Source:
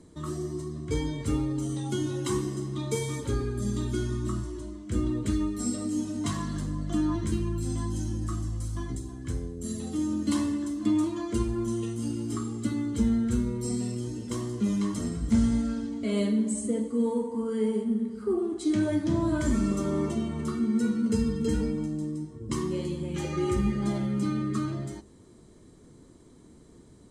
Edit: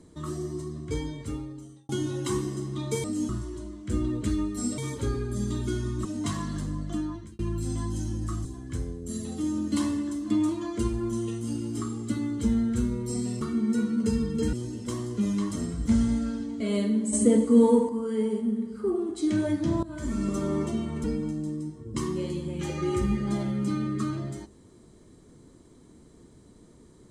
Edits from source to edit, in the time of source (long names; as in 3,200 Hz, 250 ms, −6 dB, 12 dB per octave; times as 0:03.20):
0:00.70–0:01.89: fade out linear
0:03.04–0:04.31: swap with 0:05.80–0:06.05
0:06.76–0:07.39: fade out linear
0:08.45–0:09.00: remove
0:16.56–0:17.32: clip gain +8.5 dB
0:19.26–0:19.79: fade in, from −19 dB
0:20.47–0:21.59: move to 0:13.96